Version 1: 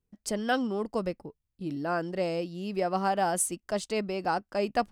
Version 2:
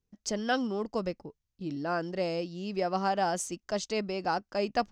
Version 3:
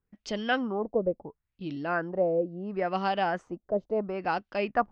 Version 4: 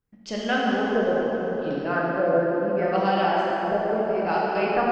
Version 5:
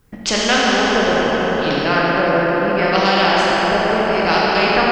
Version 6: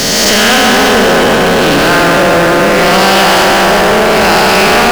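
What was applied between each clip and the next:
high shelf with overshoot 7,900 Hz −9 dB, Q 3; level −1.5 dB
auto-filter low-pass sine 0.73 Hz 520–3,300 Hz
dense smooth reverb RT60 4.4 s, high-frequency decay 0.6×, DRR −5.5 dB
every bin compressed towards the loudest bin 2 to 1; level +7.5 dB
peak hold with a rise ahead of every peak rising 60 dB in 1.10 s; power curve on the samples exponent 0.35; level −2.5 dB

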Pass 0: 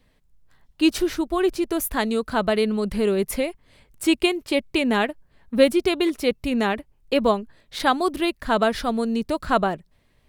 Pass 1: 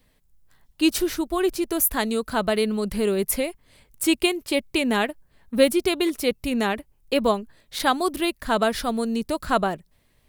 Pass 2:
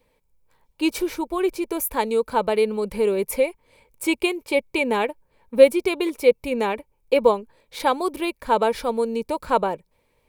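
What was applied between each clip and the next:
high-shelf EQ 7,300 Hz +11.5 dB; level −1.5 dB
hollow resonant body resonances 500/900/2,300 Hz, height 15 dB, ringing for 25 ms; level −6 dB

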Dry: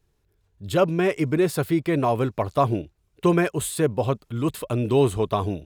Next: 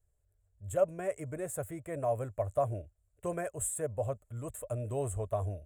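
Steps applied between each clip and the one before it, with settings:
drawn EQ curve 100 Hz 0 dB, 160 Hz −14 dB, 370 Hz −16 dB, 610 Hz +2 dB, 880 Hz −13 dB, 1,800 Hz −10 dB, 4,800 Hz −30 dB, 7,500 Hz +4 dB, 14,000 Hz −6 dB
level −5.5 dB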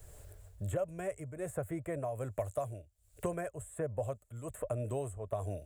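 shaped tremolo triangle 1.3 Hz, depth 80%
multiband upward and downward compressor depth 100%

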